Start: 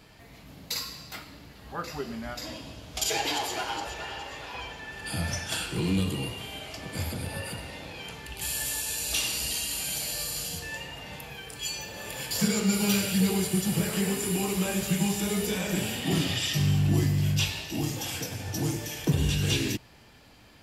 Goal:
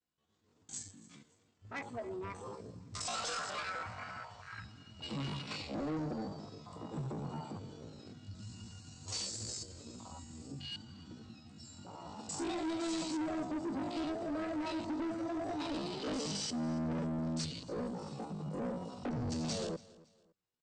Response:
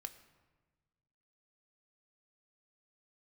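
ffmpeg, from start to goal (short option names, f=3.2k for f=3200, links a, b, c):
-af "agate=range=-33dB:threshold=-42dB:ratio=3:detection=peak,afwtdn=0.02,aresample=11025,asoftclip=type=tanh:threshold=-31dB,aresample=44100,asetrate=72056,aresample=44100,atempo=0.612027,aecho=1:1:280|560:0.0841|0.0269,volume=-3dB"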